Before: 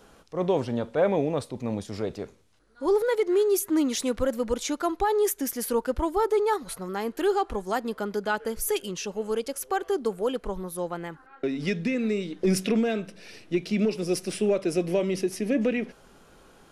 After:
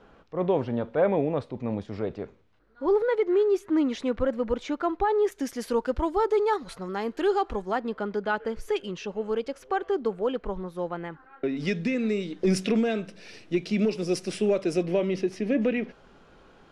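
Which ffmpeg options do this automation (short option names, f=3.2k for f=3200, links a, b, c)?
-af "asetnsamples=n=441:p=0,asendcmd='5.32 lowpass f 5200;7.62 lowpass f 3100;11.57 lowpass f 7500;14.83 lowpass f 3900',lowpass=2.6k"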